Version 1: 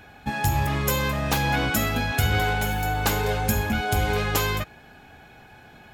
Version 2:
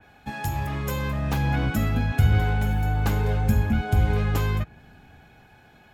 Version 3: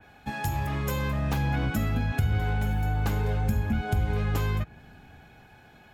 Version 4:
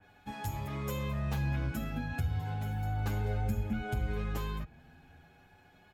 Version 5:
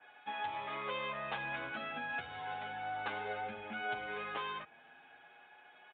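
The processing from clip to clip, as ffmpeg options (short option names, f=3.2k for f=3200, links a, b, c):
-filter_complex "[0:a]acrossover=split=230|1300|4100[a][b][c][d];[a]dynaudnorm=f=210:g=11:m=12dB[e];[e][b][c][d]amix=inputs=4:normalize=0,adynamicequalizer=threshold=0.00891:dfrequency=2900:dqfactor=0.7:tfrequency=2900:tqfactor=0.7:attack=5:release=100:ratio=0.375:range=3.5:mode=cutabove:tftype=highshelf,volume=-5.5dB"
-af "acompressor=threshold=-24dB:ratio=2.5"
-filter_complex "[0:a]asplit=2[a][b];[b]adelay=7.8,afreqshift=0.34[c];[a][c]amix=inputs=2:normalize=1,volume=-4.5dB"
-af "highpass=660,aresample=8000,aresample=44100,volume=5dB"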